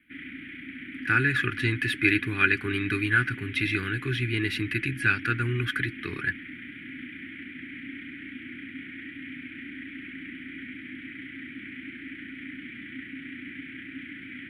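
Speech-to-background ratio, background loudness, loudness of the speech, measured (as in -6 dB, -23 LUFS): 13.5 dB, -39.5 LUFS, -26.0 LUFS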